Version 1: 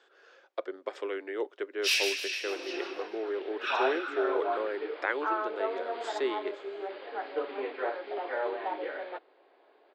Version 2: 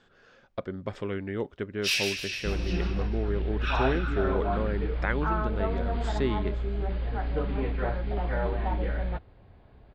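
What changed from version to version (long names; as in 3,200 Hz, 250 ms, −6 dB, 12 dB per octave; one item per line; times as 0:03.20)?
master: remove Butterworth high-pass 330 Hz 48 dB per octave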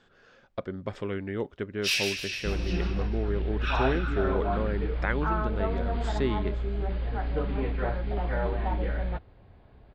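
nothing changed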